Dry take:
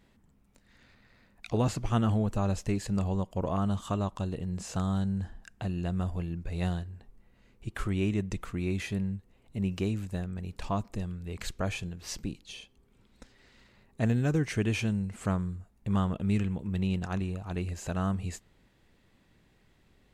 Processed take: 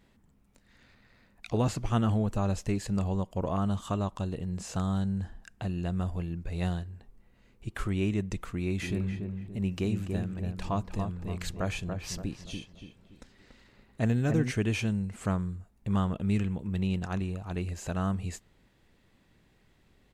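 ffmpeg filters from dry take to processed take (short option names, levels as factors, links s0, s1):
-filter_complex "[0:a]asplit=3[s0][s1][s2];[s0]afade=t=out:st=8.81:d=0.02[s3];[s1]asplit=2[s4][s5];[s5]adelay=286,lowpass=f=1500:p=1,volume=0.562,asplit=2[s6][s7];[s7]adelay=286,lowpass=f=1500:p=1,volume=0.4,asplit=2[s8][s9];[s9]adelay=286,lowpass=f=1500:p=1,volume=0.4,asplit=2[s10][s11];[s11]adelay=286,lowpass=f=1500:p=1,volume=0.4,asplit=2[s12][s13];[s13]adelay=286,lowpass=f=1500:p=1,volume=0.4[s14];[s4][s6][s8][s10][s12][s14]amix=inputs=6:normalize=0,afade=t=in:st=8.81:d=0.02,afade=t=out:st=14.5:d=0.02[s15];[s2]afade=t=in:st=14.5:d=0.02[s16];[s3][s15][s16]amix=inputs=3:normalize=0"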